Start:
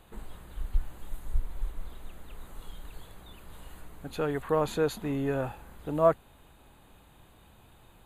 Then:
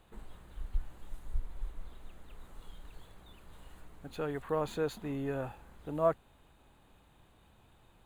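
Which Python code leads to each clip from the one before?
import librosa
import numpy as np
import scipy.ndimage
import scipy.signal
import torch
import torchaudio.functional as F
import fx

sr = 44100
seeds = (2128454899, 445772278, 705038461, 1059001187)

y = scipy.ndimage.median_filter(x, 3, mode='constant')
y = y * 10.0 ** (-6.0 / 20.0)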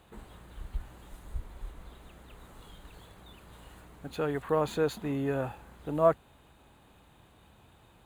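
y = scipy.signal.sosfilt(scipy.signal.butter(2, 49.0, 'highpass', fs=sr, output='sos'), x)
y = y * 10.0 ** (5.0 / 20.0)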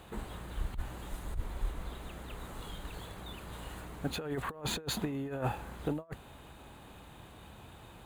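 y = fx.over_compress(x, sr, threshold_db=-35.0, ratio=-0.5)
y = y * 10.0 ** (1.5 / 20.0)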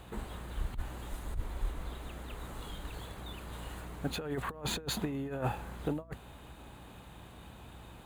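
y = fx.add_hum(x, sr, base_hz=60, snr_db=16)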